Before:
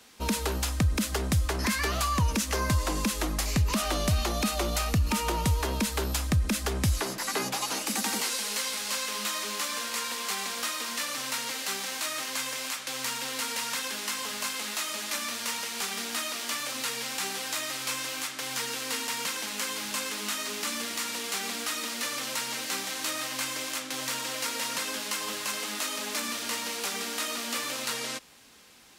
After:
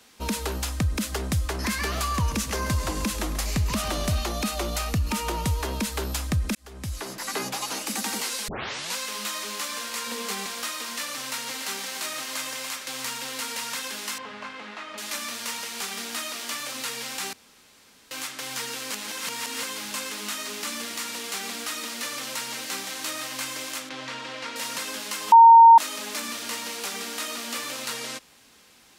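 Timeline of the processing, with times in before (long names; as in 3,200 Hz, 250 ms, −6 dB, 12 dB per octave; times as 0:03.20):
0:01.51–0:04.19: repeating echo 136 ms, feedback 57%, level −13 dB
0:06.55–0:07.32: fade in
0:08.48: tape start 0.48 s
0:10.06–0:10.46: hollow resonant body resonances 220/440 Hz, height 11 dB
0:11.18–0:13.10: single-tap delay 287 ms −9.5 dB
0:14.18–0:14.98: low-pass filter 2,100 Hz
0:17.33–0:18.11: fill with room tone
0:18.91–0:19.63: reverse
0:23.89–0:24.56: low-pass filter 3,600 Hz
0:25.32–0:25.78: beep over 919 Hz −7 dBFS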